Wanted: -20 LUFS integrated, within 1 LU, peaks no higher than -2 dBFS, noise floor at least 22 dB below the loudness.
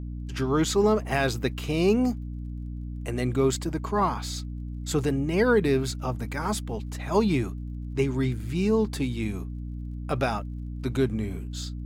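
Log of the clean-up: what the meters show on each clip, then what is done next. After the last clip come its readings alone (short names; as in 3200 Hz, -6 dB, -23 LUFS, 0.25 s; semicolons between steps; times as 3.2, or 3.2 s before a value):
ticks 25/s; hum 60 Hz; harmonics up to 300 Hz; hum level -32 dBFS; loudness -27.5 LUFS; peak -11.0 dBFS; loudness target -20.0 LUFS
-> de-click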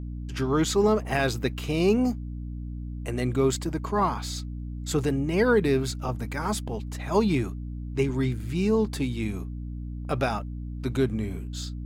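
ticks 0.17/s; hum 60 Hz; harmonics up to 300 Hz; hum level -32 dBFS
-> notches 60/120/180/240/300 Hz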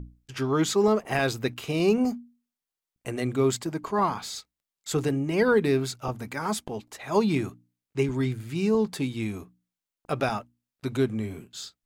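hum none; loudness -27.0 LUFS; peak -10.5 dBFS; loudness target -20.0 LUFS
-> gain +7 dB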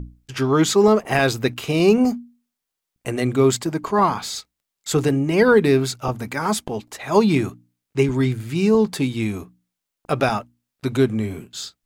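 loudness -20.0 LUFS; peak -3.5 dBFS; noise floor -83 dBFS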